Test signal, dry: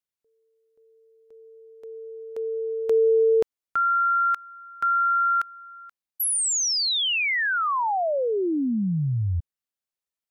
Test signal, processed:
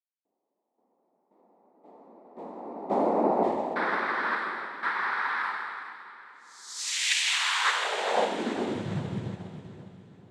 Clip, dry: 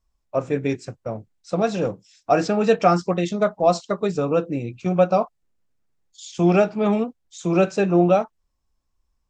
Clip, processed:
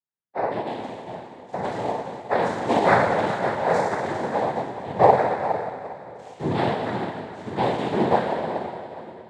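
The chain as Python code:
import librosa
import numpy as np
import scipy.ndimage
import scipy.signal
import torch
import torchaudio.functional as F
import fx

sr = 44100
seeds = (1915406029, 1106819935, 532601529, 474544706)

p1 = fx.spec_trails(x, sr, decay_s=2.37)
p2 = scipy.signal.sosfilt(scipy.signal.butter(4, 4400.0, 'lowpass', fs=sr, output='sos'), p1)
p3 = fx.small_body(p2, sr, hz=(530.0, 1200.0, 2900.0), ring_ms=45, db=7)
p4 = fx.noise_vocoder(p3, sr, seeds[0], bands=6)
p5 = p4 + fx.echo_split(p4, sr, split_hz=540.0, low_ms=533, high_ms=409, feedback_pct=52, wet_db=-10.5, dry=0)
p6 = fx.rev_spring(p5, sr, rt60_s=3.7, pass_ms=(58,), chirp_ms=65, drr_db=12.5)
p7 = fx.upward_expand(p6, sr, threshold_db=-33.0, expansion=1.5)
y = p7 * 10.0 ** (-6.0 / 20.0)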